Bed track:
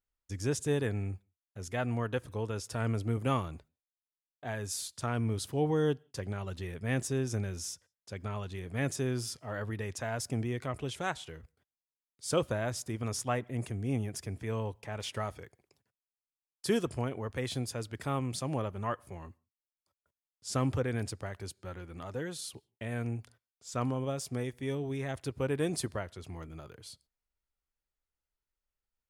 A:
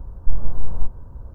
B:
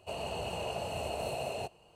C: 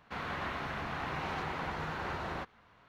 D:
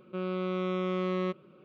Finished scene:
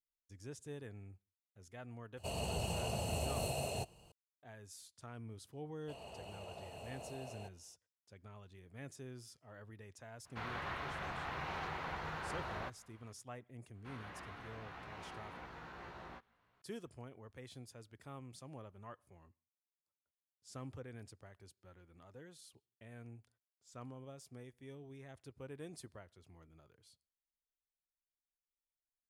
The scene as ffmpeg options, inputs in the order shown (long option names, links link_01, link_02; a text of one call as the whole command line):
ffmpeg -i bed.wav -i cue0.wav -i cue1.wav -i cue2.wav -filter_complex "[2:a]asplit=2[link_01][link_02];[3:a]asplit=2[link_03][link_04];[0:a]volume=-17.5dB[link_05];[link_01]bass=frequency=250:gain=10,treble=frequency=4000:gain=10[link_06];[link_03]equalizer=frequency=250:width_type=o:width=1:gain=-5.5[link_07];[link_04]asplit=2[link_08][link_09];[link_09]adelay=17,volume=-2dB[link_10];[link_08][link_10]amix=inputs=2:normalize=0[link_11];[link_06]atrim=end=1.95,asetpts=PTS-STARTPTS,volume=-5dB,afade=type=in:duration=0.004:curve=hsin,afade=type=out:start_time=1.946:duration=0.004:curve=hsin,adelay=2170[link_12];[link_02]atrim=end=1.95,asetpts=PTS-STARTPTS,volume=-14dB,afade=type=in:duration=0.004:curve=hsin,afade=type=out:start_time=1.946:duration=0.004:curve=hsin,adelay=256221S[link_13];[link_07]atrim=end=2.88,asetpts=PTS-STARTPTS,volume=-4.5dB,afade=type=in:duration=0.004:curve=hsin,afade=type=out:start_time=2.876:duration=0.004:curve=hsin,adelay=10250[link_14];[link_11]atrim=end=2.88,asetpts=PTS-STARTPTS,volume=-15.5dB,afade=type=in:duration=0.004:curve=hsin,afade=type=out:start_time=2.876:duration=0.004:curve=hsin,adelay=13740[link_15];[link_05][link_12][link_13][link_14][link_15]amix=inputs=5:normalize=0" out.wav